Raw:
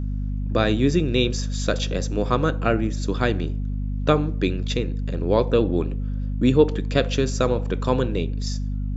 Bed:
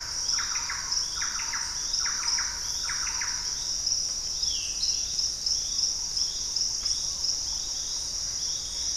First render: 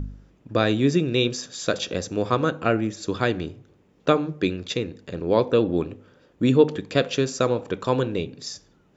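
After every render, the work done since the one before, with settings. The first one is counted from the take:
hum removal 50 Hz, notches 5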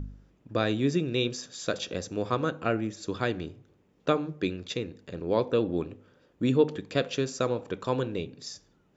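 level −6 dB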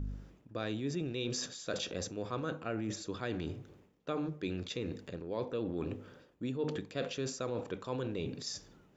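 transient designer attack +1 dB, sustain +6 dB
reversed playback
downward compressor 4 to 1, threshold −35 dBFS, peak gain reduction 16.5 dB
reversed playback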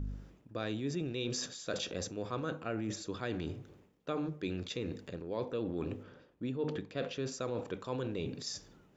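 0:06.03–0:07.32: high-frequency loss of the air 92 metres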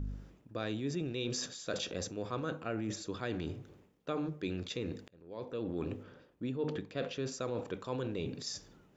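0:05.08–0:05.73: fade in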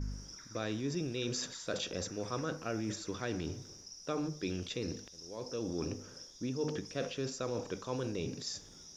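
mix in bed −24 dB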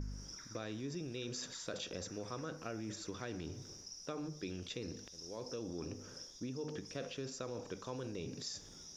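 downward compressor 3 to 1, threshold −41 dBFS, peak gain reduction 8.5 dB
level that may rise only so fast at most 510 dB per second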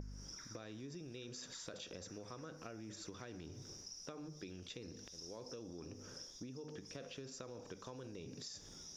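downward compressor, threshold −46 dBFS, peak gain reduction 8.5 dB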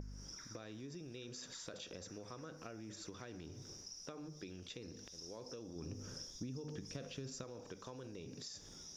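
0:05.76–0:07.44: bass and treble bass +8 dB, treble +3 dB

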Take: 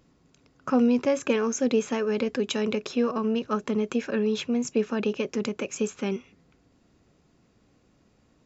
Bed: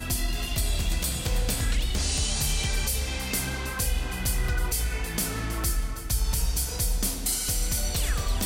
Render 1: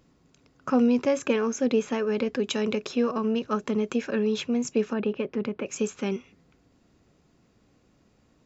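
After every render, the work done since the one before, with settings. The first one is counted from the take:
0:01.28–0:02.44: high-frequency loss of the air 58 metres
0:04.93–0:05.66: high-frequency loss of the air 320 metres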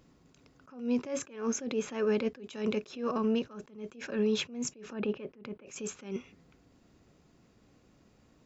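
brickwall limiter −20.5 dBFS, peak gain reduction 8 dB
level that may rise only so fast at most 130 dB per second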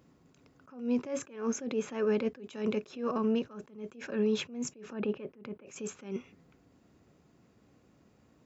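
high-pass filter 67 Hz
parametric band 4,600 Hz −4.5 dB 1.8 octaves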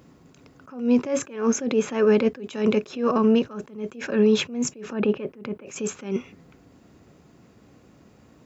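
level +10.5 dB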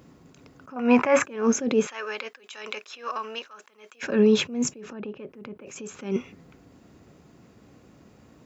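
0:00.76–0:01.24: flat-topped bell 1,300 Hz +15 dB 2.3 octaves
0:01.87–0:04.03: high-pass filter 1,200 Hz
0:04.70–0:05.94: downward compressor 2.5 to 1, threshold −39 dBFS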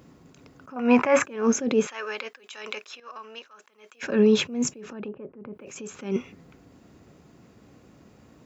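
0:03.00–0:04.17: fade in, from −13 dB
0:05.08–0:05.53: low-pass filter 1,300 Hz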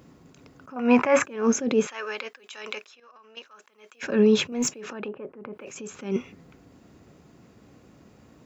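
0:02.82–0:03.37: downward compressor 5 to 1, threshold −50 dBFS
0:04.52–0:05.69: mid-hump overdrive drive 12 dB, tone 6,500 Hz, clips at −13.5 dBFS

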